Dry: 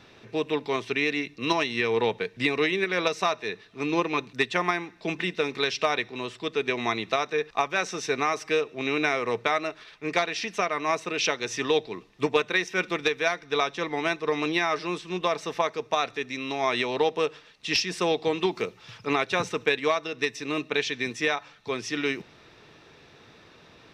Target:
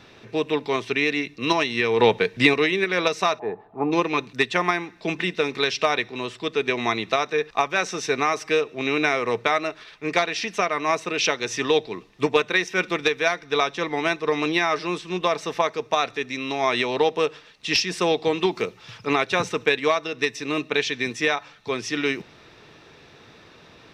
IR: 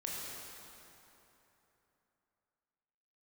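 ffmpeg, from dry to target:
-filter_complex "[0:a]asettb=1/sr,asplit=3[link_01][link_02][link_03];[link_01]atrim=end=1.994[link_04];[link_02]atrim=start=1.99:end=2.54,asetpts=PTS-STARTPTS,afade=type=in:duration=0.004:curve=qsin,afade=type=out:start_time=0.546:duration=0.004:curve=qsin,acontrast=27[link_05];[link_03]atrim=start=2.536[link_06];[link_04][link_05]acrossfade=duration=0.004:curve1=hsin:curve2=qsin[link_07];[link_07][link_06]acrossfade=duration=0.004:curve1=qsin:curve2=hsin,asplit=3[link_08][link_09][link_10];[link_08]afade=type=out:start_time=3.38:duration=0.02[link_11];[link_09]lowpass=frequency=810:width_type=q:width=9,afade=type=in:start_time=3.38:duration=0.02,afade=type=out:start_time=3.91:duration=0.02[link_12];[link_10]afade=type=in:start_time=3.91:duration=0.02[link_13];[link_11][link_12][link_13]amix=inputs=3:normalize=0,volume=3.5dB"

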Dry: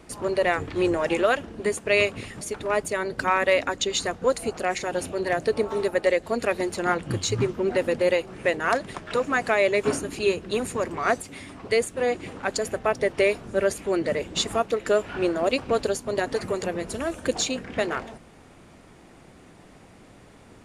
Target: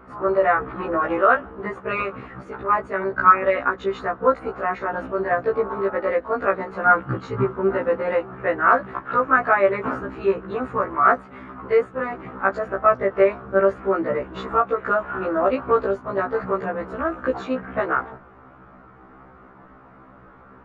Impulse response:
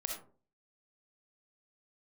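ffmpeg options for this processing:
-af "lowpass=frequency=1300:width_type=q:width=3.9,afftfilt=real='re*1.73*eq(mod(b,3),0)':imag='im*1.73*eq(mod(b,3),0)':win_size=2048:overlap=0.75,volume=3dB"

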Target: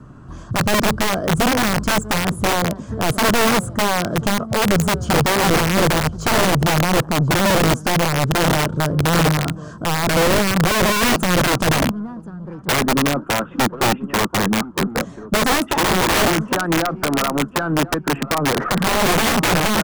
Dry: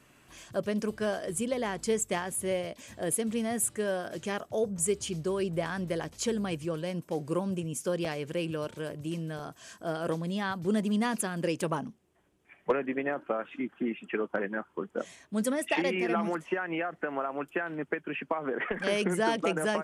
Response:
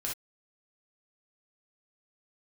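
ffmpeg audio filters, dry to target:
-filter_complex "[0:a]lowpass=6000,bass=frequency=250:gain=11,treble=frequency=4000:gain=4,asplit=2[link_01][link_02];[link_02]aeval=exprs='0.0335*(abs(mod(val(0)/0.0335+3,4)-2)-1)':channel_layout=same,volume=-4dB[link_03];[link_01][link_03]amix=inputs=2:normalize=0,highshelf=frequency=1700:width_type=q:width=3:gain=-9.5,aeval=exprs='0.266*(cos(1*acos(clip(val(0)/0.266,-1,1)))-cos(1*PI/2))+0.0106*(cos(4*acos(clip(val(0)/0.266,-1,1)))-cos(4*PI/2))':channel_layout=same,acrossover=split=410|1900[link_04][link_05][link_06];[link_04]acontrast=47[link_07];[link_07][link_05][link_06]amix=inputs=3:normalize=0,asplit=2[link_08][link_09];[link_09]adelay=1035,lowpass=frequency=4700:poles=1,volume=-17.5dB,asplit=2[link_10][link_11];[link_11]adelay=1035,lowpass=frequency=4700:poles=1,volume=0.33,asplit=2[link_12][link_13];[link_13]adelay=1035,lowpass=frequency=4700:poles=1,volume=0.33[link_14];[link_08][link_10][link_12][link_14]amix=inputs=4:normalize=0,acontrast=40,aeval=exprs='(mod(3.98*val(0)+1,2)-1)/3.98':channel_layout=same"

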